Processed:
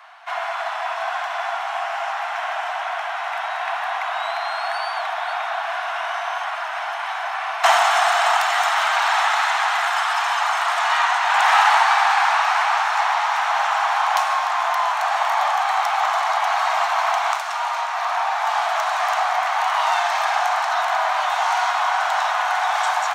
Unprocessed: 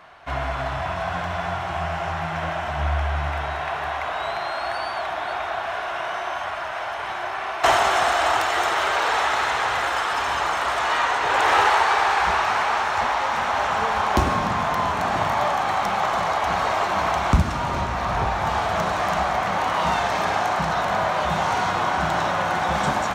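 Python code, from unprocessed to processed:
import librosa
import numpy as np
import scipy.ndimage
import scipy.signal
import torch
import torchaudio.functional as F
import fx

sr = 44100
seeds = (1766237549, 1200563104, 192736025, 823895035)

y = scipy.signal.sosfilt(scipy.signal.butter(12, 670.0, 'highpass', fs=sr, output='sos'), x)
y = y * librosa.db_to_amplitude(3.0)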